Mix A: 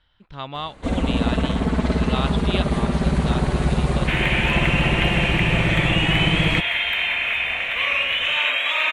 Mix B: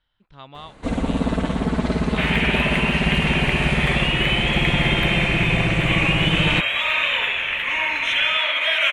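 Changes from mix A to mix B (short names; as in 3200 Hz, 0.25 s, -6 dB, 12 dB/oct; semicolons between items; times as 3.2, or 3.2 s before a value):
speech -9.0 dB; second sound: entry -1.90 s; master: add bell 69 Hz -6.5 dB 0.44 oct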